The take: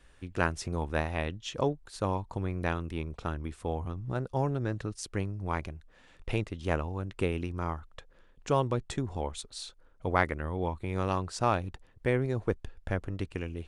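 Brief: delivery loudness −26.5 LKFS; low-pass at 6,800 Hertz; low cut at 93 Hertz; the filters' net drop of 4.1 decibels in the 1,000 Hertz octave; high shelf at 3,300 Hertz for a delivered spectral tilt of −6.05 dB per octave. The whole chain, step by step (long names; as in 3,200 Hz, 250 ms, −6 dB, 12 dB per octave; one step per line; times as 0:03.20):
high-pass filter 93 Hz
low-pass filter 6,800 Hz
parametric band 1,000 Hz −5 dB
high-shelf EQ 3,300 Hz −3.5 dB
level +8.5 dB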